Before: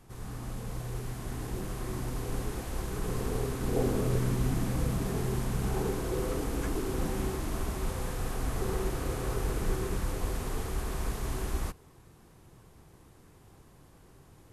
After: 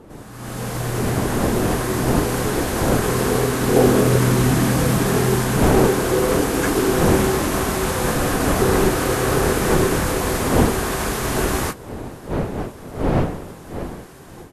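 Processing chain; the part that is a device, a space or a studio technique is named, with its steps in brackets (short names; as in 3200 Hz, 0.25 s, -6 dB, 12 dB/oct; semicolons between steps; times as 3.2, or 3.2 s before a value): HPF 220 Hz 6 dB/oct; bell 1600 Hz +3.5 dB 0.32 oct; doubler 24 ms -12 dB; smartphone video outdoors (wind noise 430 Hz; AGC gain up to 15.5 dB; gain +1.5 dB; AAC 64 kbps 32000 Hz)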